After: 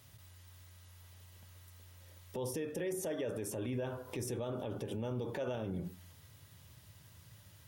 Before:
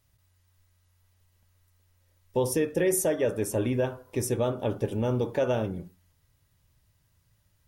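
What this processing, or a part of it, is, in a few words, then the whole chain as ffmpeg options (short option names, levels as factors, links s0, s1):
broadcast voice chain: -af "highpass=f=77:w=0.5412,highpass=f=77:w=1.3066,deesser=0.6,acompressor=threshold=0.00891:ratio=5,equalizer=f=3300:t=o:w=0.45:g=3.5,alimiter=level_in=7.08:limit=0.0631:level=0:latency=1:release=56,volume=0.141,volume=3.55"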